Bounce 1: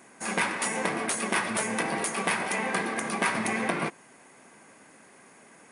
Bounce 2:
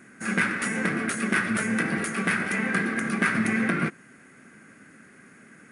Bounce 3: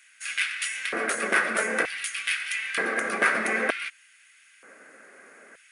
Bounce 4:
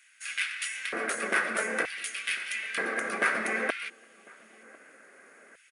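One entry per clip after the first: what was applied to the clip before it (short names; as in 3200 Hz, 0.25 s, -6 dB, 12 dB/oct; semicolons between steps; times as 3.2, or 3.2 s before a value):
EQ curve 230 Hz 0 dB, 960 Hz -19 dB, 1400 Hz 0 dB, 3400 Hz -12 dB; gain +8 dB
LFO high-pass square 0.54 Hz 530–3000 Hz; gain +1.5 dB
outdoor echo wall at 180 m, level -23 dB; gain -4 dB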